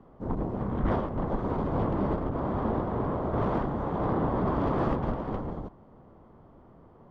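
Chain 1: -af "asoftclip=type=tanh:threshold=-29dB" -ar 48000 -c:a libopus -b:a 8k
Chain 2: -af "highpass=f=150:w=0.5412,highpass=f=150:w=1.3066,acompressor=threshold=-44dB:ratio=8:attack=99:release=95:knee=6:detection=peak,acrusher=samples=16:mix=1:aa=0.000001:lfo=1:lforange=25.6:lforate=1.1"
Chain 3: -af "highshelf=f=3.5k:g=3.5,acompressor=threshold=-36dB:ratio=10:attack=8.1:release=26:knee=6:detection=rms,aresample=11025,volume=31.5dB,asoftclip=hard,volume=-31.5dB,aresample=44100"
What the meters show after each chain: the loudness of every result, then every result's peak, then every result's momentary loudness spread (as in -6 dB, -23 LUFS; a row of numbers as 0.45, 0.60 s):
-37.0, -41.0, -39.0 LUFS; -24.5, -28.0, -31.0 dBFS; 6, 15, 17 LU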